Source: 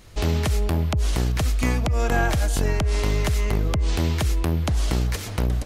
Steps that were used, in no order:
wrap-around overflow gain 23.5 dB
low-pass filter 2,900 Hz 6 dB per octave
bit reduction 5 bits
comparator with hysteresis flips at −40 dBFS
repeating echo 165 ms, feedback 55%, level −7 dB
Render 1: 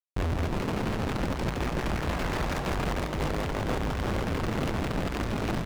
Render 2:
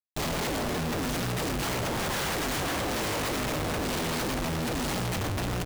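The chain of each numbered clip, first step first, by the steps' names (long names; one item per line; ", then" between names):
bit reduction, then comparator with hysteresis, then repeating echo, then wrap-around overflow, then low-pass filter
wrap-around overflow, then repeating echo, then bit reduction, then low-pass filter, then comparator with hysteresis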